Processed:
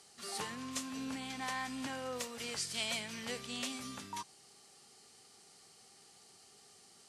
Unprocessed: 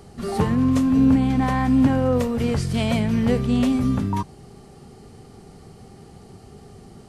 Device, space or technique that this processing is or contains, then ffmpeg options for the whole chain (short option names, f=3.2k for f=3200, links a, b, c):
piezo pickup straight into a mixer: -af "lowpass=7.7k,aderivative,volume=2.5dB"